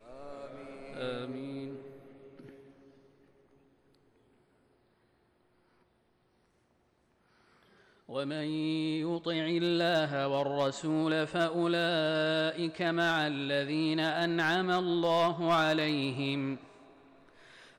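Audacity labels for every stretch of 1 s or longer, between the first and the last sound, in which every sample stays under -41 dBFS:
2.490000	8.090000	silence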